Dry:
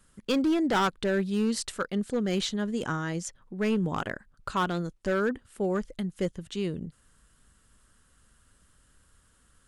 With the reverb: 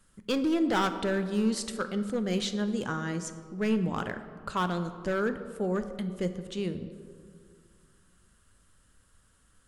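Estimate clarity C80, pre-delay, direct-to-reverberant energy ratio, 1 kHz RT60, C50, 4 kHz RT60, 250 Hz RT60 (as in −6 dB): 12.0 dB, 9 ms, 9.0 dB, 2.1 s, 11.0 dB, 1.1 s, 2.6 s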